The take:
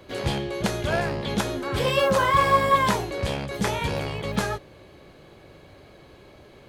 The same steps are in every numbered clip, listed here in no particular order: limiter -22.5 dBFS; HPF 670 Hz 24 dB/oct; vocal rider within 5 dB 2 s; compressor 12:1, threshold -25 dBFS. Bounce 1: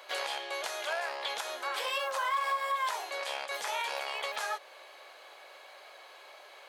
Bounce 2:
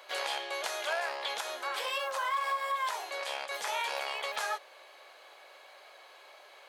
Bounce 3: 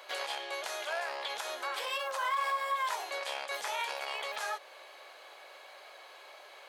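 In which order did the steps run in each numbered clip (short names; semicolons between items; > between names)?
vocal rider > compressor > HPF > limiter; compressor > HPF > limiter > vocal rider; vocal rider > compressor > limiter > HPF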